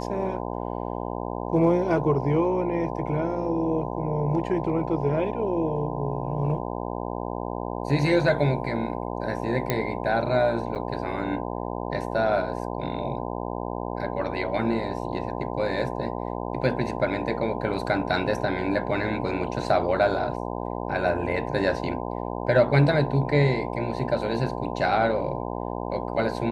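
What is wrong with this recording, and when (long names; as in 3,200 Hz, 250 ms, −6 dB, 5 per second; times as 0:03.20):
mains buzz 60 Hz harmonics 17 −31 dBFS
0:09.70: click −9 dBFS
0:10.75–0:10.76: drop-out 6.3 ms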